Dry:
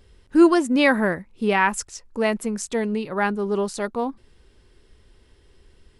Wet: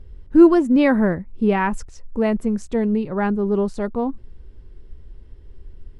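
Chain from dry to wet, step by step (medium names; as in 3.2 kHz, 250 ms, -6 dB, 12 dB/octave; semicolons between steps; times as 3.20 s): tilt EQ -3.5 dB/octave; trim -2 dB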